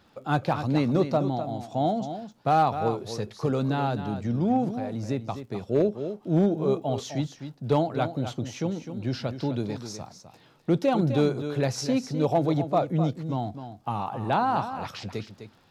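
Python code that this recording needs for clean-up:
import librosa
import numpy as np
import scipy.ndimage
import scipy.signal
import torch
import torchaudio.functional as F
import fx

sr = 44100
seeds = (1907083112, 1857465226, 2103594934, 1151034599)

y = fx.fix_declip(x, sr, threshold_db=-14.0)
y = fx.fix_declick_ar(y, sr, threshold=6.5)
y = fx.fix_echo_inverse(y, sr, delay_ms=255, level_db=-10.0)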